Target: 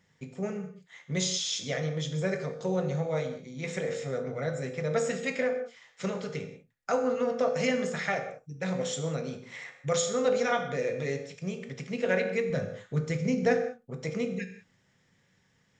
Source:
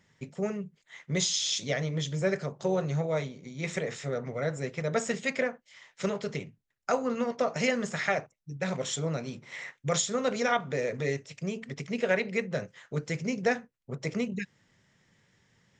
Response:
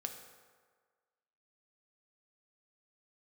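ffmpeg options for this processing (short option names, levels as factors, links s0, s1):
-filter_complex "[0:a]asettb=1/sr,asplit=3[s0][s1][s2];[s0]atrim=end=12.504[s3];[s1]atrim=start=12.5:end=13.57,asetpts=PTS-STARTPTS,afade=t=in:d=0.004:c=qsin,afade=t=out:st=1.066:d=0.004:c=qsin,lowshelf=f=170:g=10.5[s4];[s2]atrim=start=13.566[s5];[s3][s4]acrossfade=d=0.004:c1=hsin:c2=qsin[s6];[s6][s5]acrossfade=d=0.004:c1=qsin:c2=hsin[s7];[1:a]atrim=start_sample=2205,afade=t=out:st=0.25:d=0.01,atrim=end_sample=11466[s8];[s7][s8]afir=irnorm=-1:irlink=0"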